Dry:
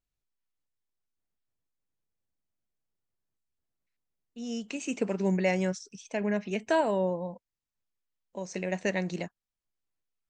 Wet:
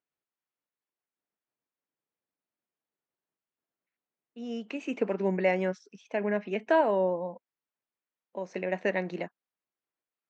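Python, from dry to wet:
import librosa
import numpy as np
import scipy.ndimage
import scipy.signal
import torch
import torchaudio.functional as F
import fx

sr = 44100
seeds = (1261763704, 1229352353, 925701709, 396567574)

y = fx.bandpass_edges(x, sr, low_hz=260.0, high_hz=2400.0)
y = y * 10.0 ** (2.5 / 20.0)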